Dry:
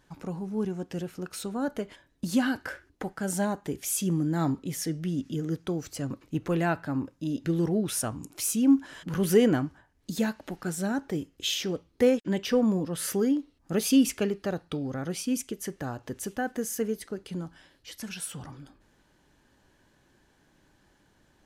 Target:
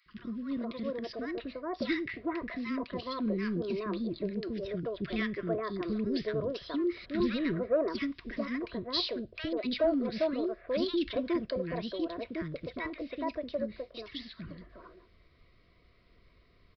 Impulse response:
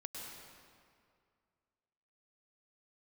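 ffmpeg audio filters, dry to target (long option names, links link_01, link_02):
-filter_complex "[0:a]asubboost=boost=2.5:cutoff=75,asetrate=56448,aresample=44100,aresample=11025,asoftclip=type=tanh:threshold=-18dB,aresample=44100,asuperstop=centerf=830:order=12:qfactor=3.9,acrossover=split=350|1400[link_01][link_02][link_03];[link_01]adelay=60[link_04];[link_02]adelay=420[link_05];[link_04][link_05][link_03]amix=inputs=3:normalize=0"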